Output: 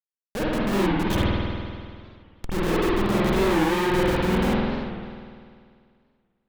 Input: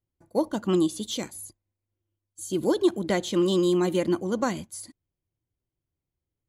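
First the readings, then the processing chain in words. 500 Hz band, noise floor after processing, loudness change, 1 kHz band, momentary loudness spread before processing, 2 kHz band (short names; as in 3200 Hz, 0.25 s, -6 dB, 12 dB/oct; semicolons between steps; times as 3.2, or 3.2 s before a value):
+1.0 dB, under -85 dBFS, +2.0 dB, +8.0 dB, 17 LU, +10.5 dB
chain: Schmitt trigger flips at -27 dBFS; spring tank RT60 2.1 s, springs 49 ms, chirp 30 ms, DRR -7.5 dB; record warp 45 rpm, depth 160 cents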